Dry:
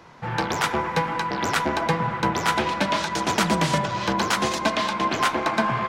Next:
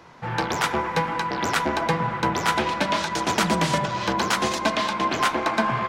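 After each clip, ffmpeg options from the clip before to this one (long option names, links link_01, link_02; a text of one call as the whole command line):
ffmpeg -i in.wav -af "bandreject=frequency=50:width_type=h:width=6,bandreject=frequency=100:width_type=h:width=6,bandreject=frequency=150:width_type=h:width=6,bandreject=frequency=200:width_type=h:width=6" out.wav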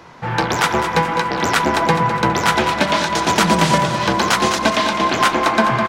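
ffmpeg -i in.wav -af "aecho=1:1:206|412|618|824|1030:0.335|0.144|0.0619|0.0266|0.0115,volume=6.5dB" out.wav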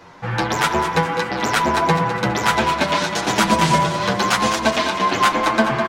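ffmpeg -i in.wav -filter_complex "[0:a]asplit=2[link_01][link_02];[link_02]adelay=8.3,afreqshift=1[link_03];[link_01][link_03]amix=inputs=2:normalize=1,volume=1dB" out.wav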